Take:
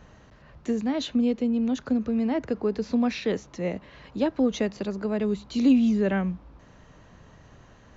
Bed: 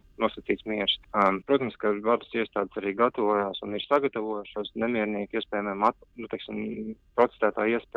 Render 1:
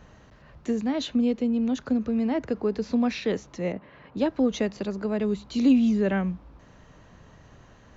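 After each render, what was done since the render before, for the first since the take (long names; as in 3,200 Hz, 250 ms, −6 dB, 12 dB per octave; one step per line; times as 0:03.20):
0:03.72–0:04.17: band-pass filter 110–2,200 Hz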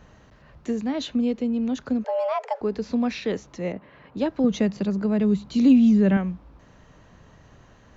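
0:02.04–0:02.61: frequency shifter +370 Hz
0:04.44–0:06.17: parametric band 170 Hz +10.5 dB 0.84 octaves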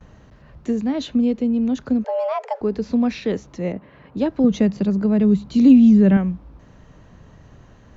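noise gate with hold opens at −46 dBFS
low-shelf EQ 450 Hz +6.5 dB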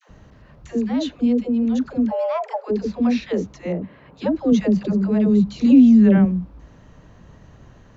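all-pass dispersion lows, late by 91 ms, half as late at 520 Hz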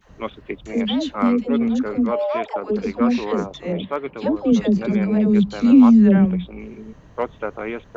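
mix in bed −3 dB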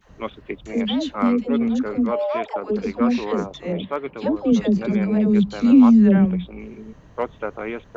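level −1 dB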